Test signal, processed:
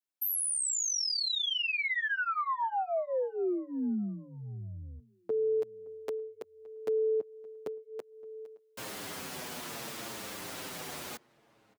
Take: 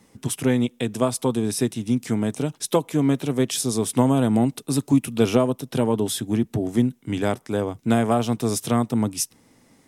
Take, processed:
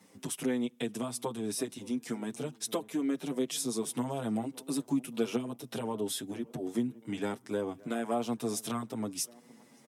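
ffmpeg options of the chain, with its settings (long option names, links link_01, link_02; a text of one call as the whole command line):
ffmpeg -i in.wav -filter_complex "[0:a]acompressor=threshold=-32dB:ratio=2,highpass=190,asplit=2[link_01][link_02];[link_02]adelay=569,lowpass=frequency=1800:poles=1,volume=-22dB,asplit=2[link_03][link_04];[link_04]adelay=569,lowpass=frequency=1800:poles=1,volume=0.37,asplit=2[link_05][link_06];[link_06]adelay=569,lowpass=frequency=1800:poles=1,volume=0.37[link_07];[link_03][link_05][link_07]amix=inputs=3:normalize=0[link_08];[link_01][link_08]amix=inputs=2:normalize=0,asplit=2[link_09][link_10];[link_10]adelay=7.3,afreqshift=-0.67[link_11];[link_09][link_11]amix=inputs=2:normalize=1" out.wav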